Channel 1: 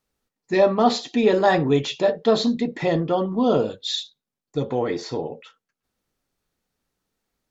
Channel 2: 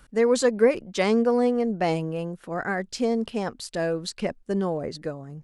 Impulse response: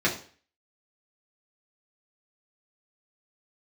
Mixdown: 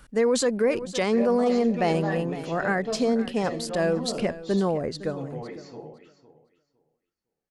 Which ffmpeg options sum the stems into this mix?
-filter_complex "[0:a]equalizer=frequency=3600:width=7.1:gain=-12,adelay=600,volume=-15.5dB,asplit=3[link_01][link_02][link_03];[link_02]volume=-16dB[link_04];[link_03]volume=-13dB[link_05];[1:a]volume=2dB,asplit=2[link_06][link_07];[link_07]volume=-16.5dB[link_08];[2:a]atrim=start_sample=2205[link_09];[link_04][link_09]afir=irnorm=-1:irlink=0[link_10];[link_05][link_08]amix=inputs=2:normalize=0,aecho=0:1:509|1018|1527:1|0.18|0.0324[link_11];[link_01][link_06][link_10][link_11]amix=inputs=4:normalize=0,alimiter=limit=-14dB:level=0:latency=1:release=20"

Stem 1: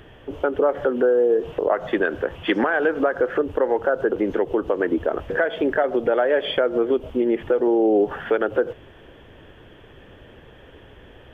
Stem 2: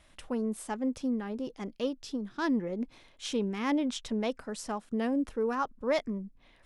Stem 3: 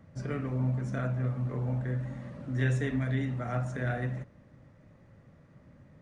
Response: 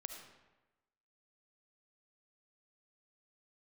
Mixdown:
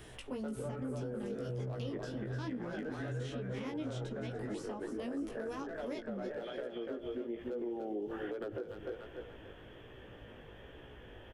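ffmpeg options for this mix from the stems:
-filter_complex "[0:a]aeval=exprs='0.299*(abs(mod(val(0)/0.299+3,4)-2)-1)':channel_layout=same,volume=-4.5dB,asplit=3[link_01][link_02][link_03];[link_02]volume=-14dB[link_04];[link_03]volume=-12dB[link_05];[1:a]aexciter=amount=3:drive=6.2:freq=2300,volume=-2.5dB,asplit=4[link_06][link_07][link_08][link_09];[link_07]volume=-19.5dB[link_10];[link_08]volume=-18dB[link_11];[2:a]flanger=delay=4.5:depth=8.4:regen=62:speed=0.64:shape=triangular,adelay=400,volume=1dB[link_12];[link_09]apad=whole_len=499802[link_13];[link_01][link_13]sidechaincompress=threshold=-48dB:ratio=4:attack=16:release=1450[link_14];[3:a]atrim=start_sample=2205[link_15];[link_04][link_10]amix=inputs=2:normalize=0[link_16];[link_16][link_15]afir=irnorm=-1:irlink=0[link_17];[link_05][link_11]amix=inputs=2:normalize=0,aecho=0:1:292|584|876|1168|1460:1|0.38|0.144|0.0549|0.0209[link_18];[link_14][link_06][link_12][link_17][link_18]amix=inputs=5:normalize=0,acrossover=split=410|3100[link_19][link_20][link_21];[link_19]acompressor=threshold=-29dB:ratio=4[link_22];[link_20]acompressor=threshold=-39dB:ratio=4[link_23];[link_21]acompressor=threshold=-56dB:ratio=4[link_24];[link_22][link_23][link_24]amix=inputs=3:normalize=0,flanger=delay=16:depth=3.5:speed=1.2,alimiter=level_in=7dB:limit=-24dB:level=0:latency=1:release=168,volume=-7dB"

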